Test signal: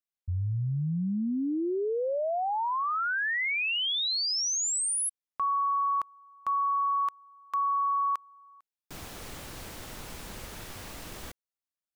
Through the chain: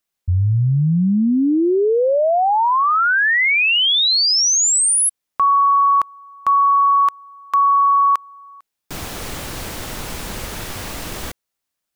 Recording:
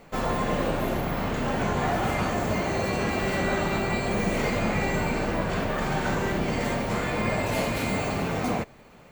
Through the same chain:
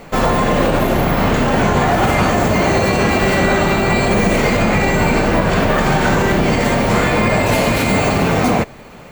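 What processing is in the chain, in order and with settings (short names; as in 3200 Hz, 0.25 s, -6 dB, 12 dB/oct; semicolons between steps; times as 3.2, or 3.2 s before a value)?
maximiser +17.5 dB; gain -4 dB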